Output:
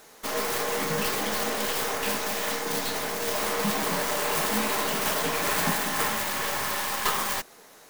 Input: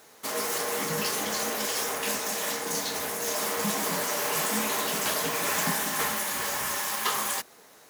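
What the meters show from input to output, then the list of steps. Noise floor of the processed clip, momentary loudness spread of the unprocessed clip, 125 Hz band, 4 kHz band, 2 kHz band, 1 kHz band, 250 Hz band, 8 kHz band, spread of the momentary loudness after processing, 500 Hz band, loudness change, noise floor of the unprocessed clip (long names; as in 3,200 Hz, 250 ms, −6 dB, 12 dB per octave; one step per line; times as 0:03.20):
−52 dBFS, 3 LU, +3.0 dB, +1.0 dB, +2.0 dB, +2.5 dB, +2.5 dB, −2.0 dB, 3 LU, +2.5 dB, +1.0 dB, −54 dBFS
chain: stylus tracing distortion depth 0.3 ms
level +2.5 dB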